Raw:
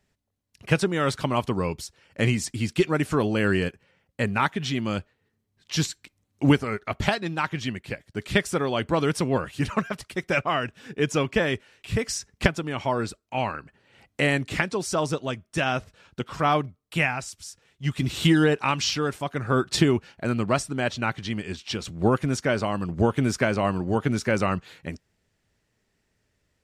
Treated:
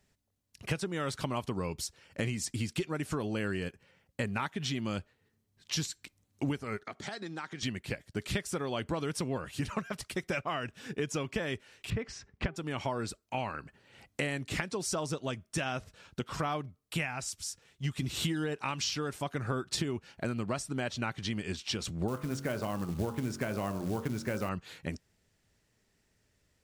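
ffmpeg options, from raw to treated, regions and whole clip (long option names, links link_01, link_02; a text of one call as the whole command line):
ffmpeg -i in.wav -filter_complex "[0:a]asettb=1/sr,asplit=3[link_01][link_02][link_03];[link_01]atrim=end=6.834[link_04];[link_02]atrim=start=6.83:end=7.63,asetpts=PTS-STARTPTS,afade=type=in:duration=0.004:curve=qsin,afade=type=out:start_time=0.796:duration=0.004:curve=qsin,acompressor=threshold=-33dB:ratio=4:attack=3.2:release=140:knee=1:detection=peak,highpass=230,equalizer=frequency=590:width_type=q:width=4:gain=-5,equalizer=frequency=1000:width_type=q:width=4:gain=-5,equalizer=frequency=2700:width_type=q:width=4:gain=-9,lowpass=frequency=9100:width=0.5412,lowpass=frequency=9100:width=1.3066[link_05];[link_03]atrim=start=7.626[link_06];[link_04][link_05]acrossfade=duration=0.004:curve1=hsin:curve2=qsin[link_07];[link_07][link_06]acrossfade=duration=0.004:curve1=qsin:curve2=hsin,asettb=1/sr,asplit=3[link_08][link_09][link_10];[link_08]atrim=end=11.904[link_11];[link_09]atrim=start=11.9:end=12.56,asetpts=PTS-STARTPTS,afade=type=in:duration=0.004:curve=qsin,afade=type=out:start_time=0.656:duration=0.004:curve=qsin,lowpass=2400,bandreject=frequency=393.7:width_type=h:width=4,bandreject=frequency=787.4:width_type=h:width=4,bandreject=frequency=1181.1:width_type=h:width=4[link_12];[link_10]atrim=start=12.556[link_13];[link_11][link_12]acrossfade=duration=0.004:curve1=hsin:curve2=qsin[link_14];[link_14][link_13]acrossfade=duration=0.004:curve1=qsin:curve2=hsin,asettb=1/sr,asplit=3[link_15][link_16][link_17];[link_15]atrim=end=22.084[link_18];[link_16]atrim=start=22.08:end=24.49,asetpts=PTS-STARTPTS,afade=type=in:duration=0.004:curve=qsin,afade=type=out:start_time=2.406:duration=0.004:curve=qsin,highshelf=frequency=2900:gain=-8,bandreject=frequency=45.8:width_type=h:width=4,bandreject=frequency=91.6:width_type=h:width=4,bandreject=frequency=137.4:width_type=h:width=4,bandreject=frequency=183.2:width_type=h:width=4,bandreject=frequency=229:width_type=h:width=4,bandreject=frequency=274.8:width_type=h:width=4,bandreject=frequency=320.6:width_type=h:width=4,bandreject=frequency=366.4:width_type=h:width=4,bandreject=frequency=412.2:width_type=h:width=4,bandreject=frequency=458:width_type=h:width=4,bandreject=frequency=503.8:width_type=h:width=4,bandreject=frequency=549.6:width_type=h:width=4,bandreject=frequency=595.4:width_type=h:width=4,bandreject=frequency=641.2:width_type=h:width=4,bandreject=frequency=687:width_type=h:width=4,bandreject=frequency=732.8:width_type=h:width=4,bandreject=frequency=778.6:width_type=h:width=4,bandreject=frequency=824.4:width_type=h:width=4,bandreject=frequency=870.2:width_type=h:width=4,bandreject=frequency=916:width_type=h:width=4,bandreject=frequency=961.8:width_type=h:width=4,bandreject=frequency=1007.6:width_type=h:width=4,bandreject=frequency=1053.4:width_type=h:width=4,bandreject=frequency=1099.2:width_type=h:width=4,bandreject=frequency=1145:width_type=h:width=4,bandreject=frequency=1190.8:width_type=h:width=4,bandreject=frequency=1236.6:width_type=h:width=4,bandreject=frequency=1282.4:width_type=h:width=4,bandreject=frequency=1328.2:width_type=h:width=4,bandreject=frequency=1374:width_type=h:width=4,bandreject=frequency=1419.8:width_type=h:width=4,bandreject=frequency=1465.6:width_type=h:width=4,bandreject=frequency=1511.4:width_type=h:width=4,bandreject=frequency=1557.2:width_type=h:width=4,acrusher=bits=5:mode=log:mix=0:aa=0.000001[link_19];[link_17]atrim=start=24.486[link_20];[link_18][link_19]acrossfade=duration=0.004:curve1=hsin:curve2=qsin[link_21];[link_21][link_20]acrossfade=duration=0.004:curve1=qsin:curve2=hsin,bass=frequency=250:gain=1,treble=frequency=4000:gain=4,acompressor=threshold=-29dB:ratio=6,volume=-1.5dB" out.wav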